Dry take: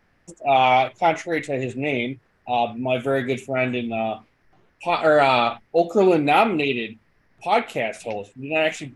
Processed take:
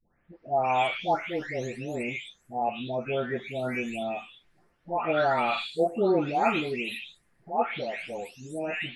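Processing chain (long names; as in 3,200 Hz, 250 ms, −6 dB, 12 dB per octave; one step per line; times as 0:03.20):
every frequency bin delayed by itself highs late, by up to 563 ms
level −6 dB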